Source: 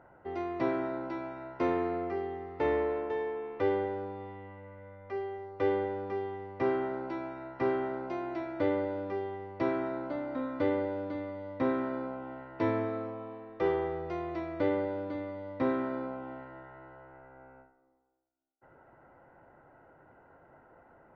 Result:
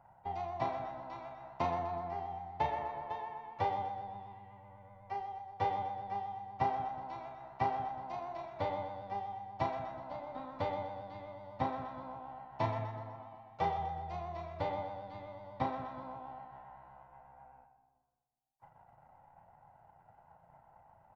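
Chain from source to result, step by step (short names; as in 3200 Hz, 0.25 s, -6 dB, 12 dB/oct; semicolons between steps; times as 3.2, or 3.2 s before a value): EQ curve 110 Hz 0 dB, 180 Hz -1 dB, 310 Hz -19 dB, 460 Hz -16 dB, 810 Hz +5 dB, 1400 Hz -11 dB, 3800 Hz 0 dB; transient shaper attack +8 dB, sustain -10 dB; harmoniser +3 st -16 dB; vibrato 8 Hz 49 cents; doubler 35 ms -6 dB; split-band echo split 360 Hz, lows 0.181 s, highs 0.125 s, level -11 dB; gain -3.5 dB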